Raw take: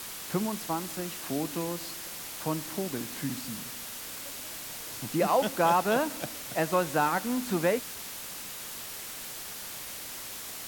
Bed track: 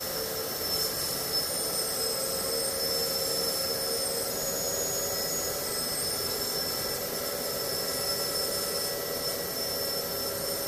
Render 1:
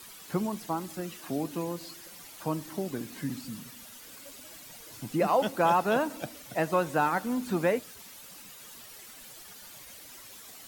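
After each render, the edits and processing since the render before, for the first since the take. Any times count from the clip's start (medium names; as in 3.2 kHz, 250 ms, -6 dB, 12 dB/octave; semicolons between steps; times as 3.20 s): noise reduction 11 dB, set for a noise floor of -41 dBFS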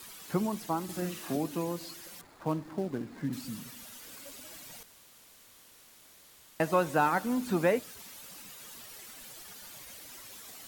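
0.84–1.37 s: doubling 50 ms -2 dB; 2.21–3.33 s: median filter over 15 samples; 4.83–6.60 s: room tone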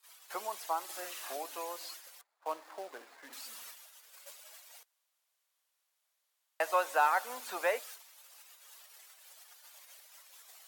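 gate -46 dBFS, range -24 dB; high-pass 590 Hz 24 dB/octave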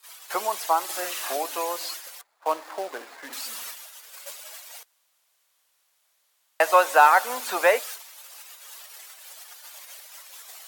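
trim +12 dB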